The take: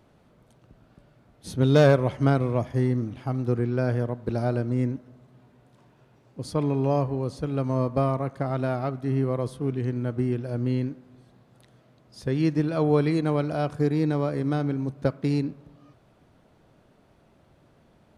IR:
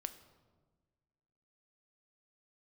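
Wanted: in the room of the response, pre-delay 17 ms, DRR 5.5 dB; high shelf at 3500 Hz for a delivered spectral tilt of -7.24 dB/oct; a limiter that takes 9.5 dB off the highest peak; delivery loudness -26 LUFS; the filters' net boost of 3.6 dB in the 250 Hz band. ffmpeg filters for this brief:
-filter_complex "[0:a]equalizer=f=250:t=o:g=4.5,highshelf=f=3.5k:g=-7.5,alimiter=limit=-16dB:level=0:latency=1,asplit=2[a][b];[1:a]atrim=start_sample=2205,adelay=17[c];[b][c]afir=irnorm=-1:irlink=0,volume=-3dB[d];[a][d]amix=inputs=2:normalize=0,volume=-0.5dB"

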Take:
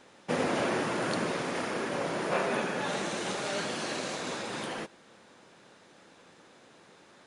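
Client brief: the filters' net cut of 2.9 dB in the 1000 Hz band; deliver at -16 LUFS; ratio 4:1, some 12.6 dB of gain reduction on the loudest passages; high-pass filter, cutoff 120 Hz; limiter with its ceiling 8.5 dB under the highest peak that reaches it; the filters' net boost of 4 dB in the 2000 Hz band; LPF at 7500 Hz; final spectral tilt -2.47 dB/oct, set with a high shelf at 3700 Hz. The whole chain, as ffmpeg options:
-af "highpass=120,lowpass=7.5k,equalizer=f=1k:t=o:g=-6,equalizer=f=2k:t=o:g=5,highshelf=f=3.7k:g=7.5,acompressor=threshold=-41dB:ratio=4,volume=30dB,alimiter=limit=-6.5dB:level=0:latency=1"

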